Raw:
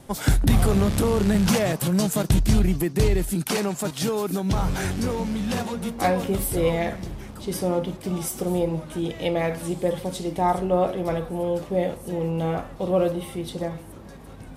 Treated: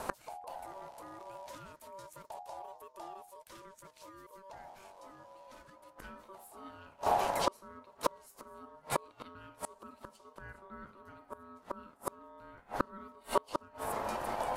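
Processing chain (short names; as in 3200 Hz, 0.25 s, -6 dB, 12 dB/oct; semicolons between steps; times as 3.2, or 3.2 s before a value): flipped gate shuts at -22 dBFS, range -34 dB; ring modulator 770 Hz; gain +8.5 dB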